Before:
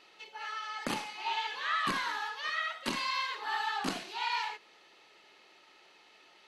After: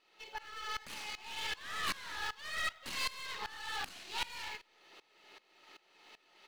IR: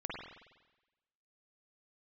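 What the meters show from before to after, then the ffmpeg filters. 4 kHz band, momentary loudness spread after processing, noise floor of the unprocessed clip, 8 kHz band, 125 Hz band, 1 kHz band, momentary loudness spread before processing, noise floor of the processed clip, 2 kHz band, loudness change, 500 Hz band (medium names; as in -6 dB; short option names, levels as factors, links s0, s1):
-3.0 dB, 22 LU, -61 dBFS, +0.5 dB, -7.5 dB, -9.5 dB, 8 LU, -71 dBFS, -5.0 dB, -5.5 dB, -8.0 dB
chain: -filter_complex "[0:a]acrossover=split=1500[s0][s1];[s0]acompressor=threshold=0.00501:ratio=6[s2];[s1]acrusher=bits=5:mode=log:mix=0:aa=0.000001[s3];[s2][s3]amix=inputs=2:normalize=0,aeval=exprs='(tanh(89.1*val(0)+0.75)-tanh(0.75))/89.1':c=same,asplit=2[s4][s5];[s5]adelay=244.9,volume=0.0447,highshelf=f=4000:g=-5.51[s6];[s4][s6]amix=inputs=2:normalize=0,aeval=exprs='val(0)*pow(10,-20*if(lt(mod(-2.6*n/s,1),2*abs(-2.6)/1000),1-mod(-2.6*n/s,1)/(2*abs(-2.6)/1000),(mod(-2.6*n/s,1)-2*abs(-2.6)/1000)/(1-2*abs(-2.6)/1000))/20)':c=same,volume=3.16"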